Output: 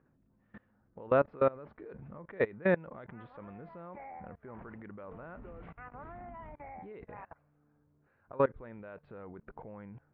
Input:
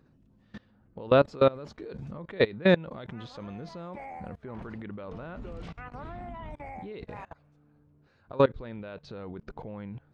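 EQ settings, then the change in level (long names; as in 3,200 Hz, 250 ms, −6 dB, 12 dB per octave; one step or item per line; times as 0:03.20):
low-pass filter 2,100 Hz 24 dB per octave
high-frequency loss of the air 50 metres
low-shelf EQ 420 Hz −6.5 dB
−3.0 dB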